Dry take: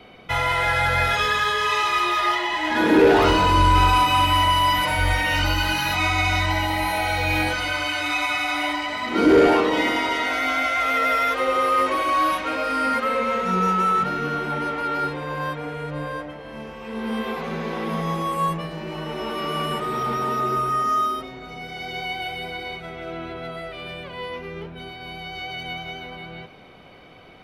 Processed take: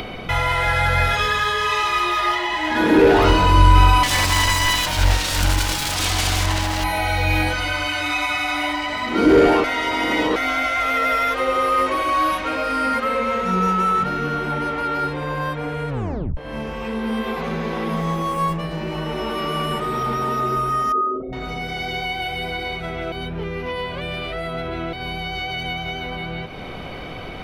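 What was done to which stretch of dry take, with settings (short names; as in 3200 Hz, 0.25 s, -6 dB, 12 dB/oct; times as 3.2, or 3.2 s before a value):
4.03–6.84 self-modulated delay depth 0.45 ms
9.64–10.36 reverse
15.89 tape stop 0.48 s
17.96–18.61 running maximum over 3 samples
20.92–21.33 formant sharpening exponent 3
23.12–24.93 reverse
whole clip: low shelf 81 Hz +11 dB; upward compressor, threshold -21 dBFS; gain +1 dB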